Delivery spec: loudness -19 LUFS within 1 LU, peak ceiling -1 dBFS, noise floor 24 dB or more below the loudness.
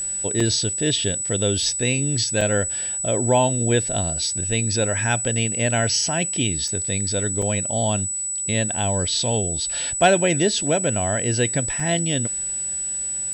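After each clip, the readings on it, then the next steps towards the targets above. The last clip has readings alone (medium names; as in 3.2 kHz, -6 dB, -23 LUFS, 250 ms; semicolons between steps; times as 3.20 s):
dropouts 5; longest dropout 4.0 ms; steady tone 7.9 kHz; tone level -24 dBFS; loudness -20.5 LUFS; peak level -3.0 dBFS; loudness target -19.0 LUFS
-> interpolate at 0.40/2.41/6.68/7.42/11.80 s, 4 ms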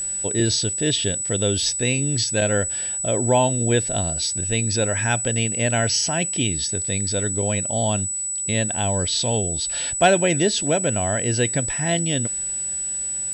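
dropouts 0; steady tone 7.9 kHz; tone level -24 dBFS
-> band-stop 7.9 kHz, Q 30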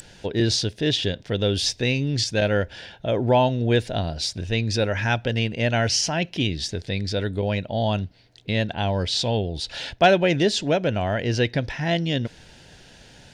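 steady tone not found; loudness -23.5 LUFS; peak level -4.0 dBFS; loudness target -19.0 LUFS
-> trim +4.5 dB; peak limiter -1 dBFS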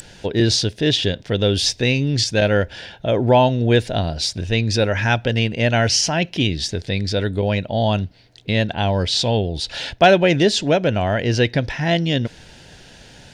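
loudness -19.0 LUFS; peak level -1.0 dBFS; noise floor -45 dBFS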